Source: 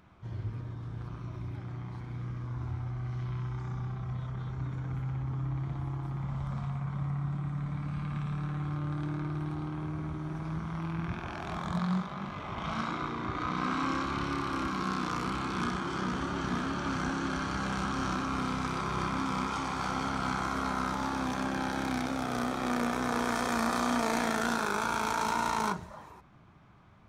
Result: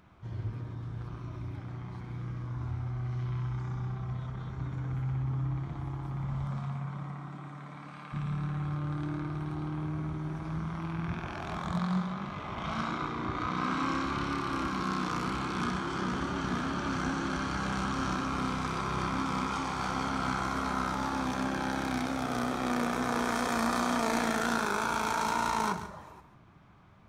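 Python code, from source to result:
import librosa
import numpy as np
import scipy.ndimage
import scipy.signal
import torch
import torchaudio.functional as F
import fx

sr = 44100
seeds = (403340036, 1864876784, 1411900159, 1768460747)

y = fx.highpass(x, sr, hz=fx.line((6.46, 110.0), (8.12, 450.0)), slope=12, at=(6.46, 8.12), fade=0.02)
y = fx.echo_multitap(y, sr, ms=(138, 176), db=(-12.0, -19.5))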